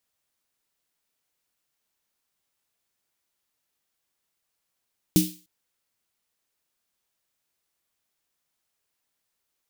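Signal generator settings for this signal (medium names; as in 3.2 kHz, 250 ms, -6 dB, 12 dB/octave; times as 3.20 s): snare drum length 0.30 s, tones 180 Hz, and 310 Hz, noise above 2.8 kHz, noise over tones -7 dB, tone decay 0.30 s, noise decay 0.39 s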